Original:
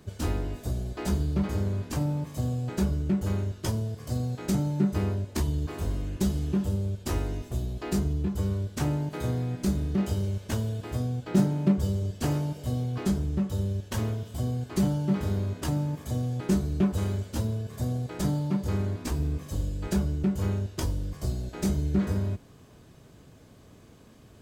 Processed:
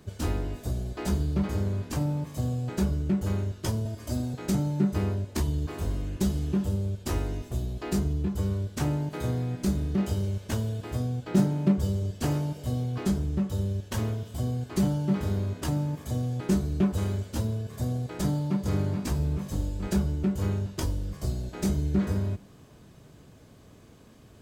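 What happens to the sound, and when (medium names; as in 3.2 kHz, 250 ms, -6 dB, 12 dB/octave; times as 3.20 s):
3.85–4.34 s: comb 3.2 ms, depth 92%
18.22–18.64 s: echo throw 430 ms, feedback 70%, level -5.5 dB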